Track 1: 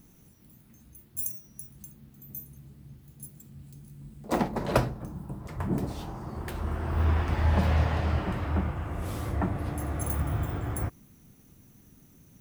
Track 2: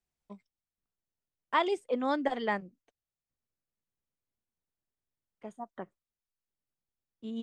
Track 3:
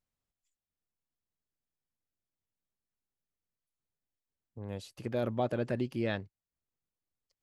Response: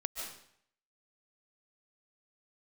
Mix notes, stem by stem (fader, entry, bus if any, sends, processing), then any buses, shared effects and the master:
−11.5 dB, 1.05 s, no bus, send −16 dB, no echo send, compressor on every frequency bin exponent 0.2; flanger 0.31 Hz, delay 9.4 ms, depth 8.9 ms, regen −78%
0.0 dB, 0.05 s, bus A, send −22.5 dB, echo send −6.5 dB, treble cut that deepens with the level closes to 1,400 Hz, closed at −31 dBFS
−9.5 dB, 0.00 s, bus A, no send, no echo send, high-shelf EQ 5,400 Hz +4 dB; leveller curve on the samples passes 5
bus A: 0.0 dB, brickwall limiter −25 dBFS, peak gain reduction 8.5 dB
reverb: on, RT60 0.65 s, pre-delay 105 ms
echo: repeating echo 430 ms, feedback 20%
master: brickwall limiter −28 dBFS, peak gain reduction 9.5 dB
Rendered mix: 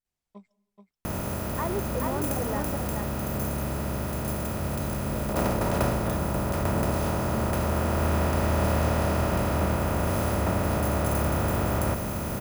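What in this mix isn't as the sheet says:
stem 1 −11.5 dB → −3.0 dB
stem 3: missing leveller curve on the samples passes 5
master: missing brickwall limiter −28 dBFS, peak gain reduction 9.5 dB

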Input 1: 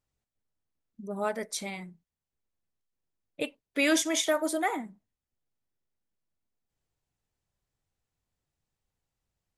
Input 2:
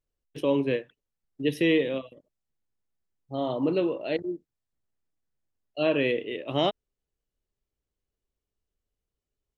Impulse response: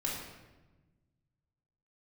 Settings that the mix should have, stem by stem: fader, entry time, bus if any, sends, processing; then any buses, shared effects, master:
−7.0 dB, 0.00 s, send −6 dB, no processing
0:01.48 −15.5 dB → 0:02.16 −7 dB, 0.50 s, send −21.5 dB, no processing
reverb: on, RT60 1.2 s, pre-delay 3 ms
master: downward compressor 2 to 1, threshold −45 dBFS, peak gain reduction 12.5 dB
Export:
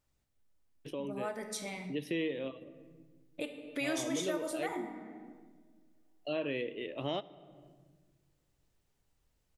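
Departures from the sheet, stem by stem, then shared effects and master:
stem 1 −7.0 dB → +1.0 dB
stem 2 −15.5 dB → −5.0 dB

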